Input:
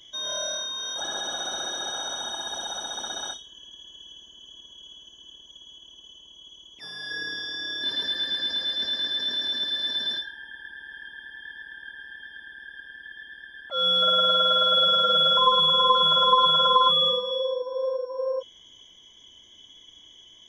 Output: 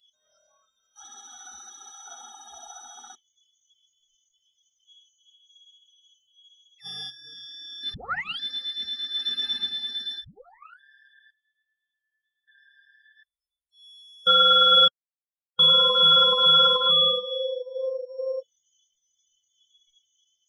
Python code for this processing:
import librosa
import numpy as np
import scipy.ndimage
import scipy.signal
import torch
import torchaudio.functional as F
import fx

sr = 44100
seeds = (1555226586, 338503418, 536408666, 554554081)

y = fx.peak_eq(x, sr, hz=690.0, db=-6.5, octaves=1.9, at=(0.67, 2.06), fade=0.02)
y = fx.over_compress(y, sr, threshold_db=-36.0, ratio=-0.5, at=(6.84, 7.24), fade=0.02)
y = fx.reverb_throw(y, sr, start_s=9.11, length_s=0.44, rt60_s=2.6, drr_db=-2.5)
y = fx.bandpass_q(y, sr, hz=2500.0, q=12.0, at=(11.31, 12.48))
y = fx.cheby2_bandstop(y, sr, low_hz=160.0, high_hz=2800.0, order=4, stop_db=40, at=(13.23, 14.27))
y = fx.peak_eq(y, sr, hz=6600.0, db=-9.0, octaves=0.78, at=(16.77, 18.09))
y = fx.edit(y, sr, fx.room_tone_fill(start_s=3.15, length_s=1.73),
    fx.tape_start(start_s=7.94, length_s=0.46),
    fx.tape_start(start_s=10.24, length_s=0.56),
    fx.silence(start_s=14.88, length_s=0.71), tone=tone)
y = fx.noise_reduce_blind(y, sr, reduce_db=28)
y = y + 0.79 * np.pad(y, (int(1.5 * sr / 1000.0), 0))[:len(y)]
y = fx.upward_expand(y, sr, threshold_db=-35.0, expansion=1.5)